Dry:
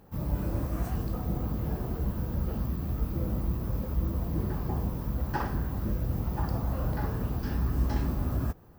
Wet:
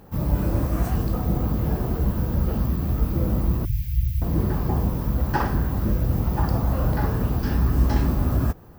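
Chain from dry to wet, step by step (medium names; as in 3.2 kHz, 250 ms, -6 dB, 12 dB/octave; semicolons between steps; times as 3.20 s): 3.65–4.22 s: elliptic band-stop 130–2200 Hz, stop band 40 dB; trim +8 dB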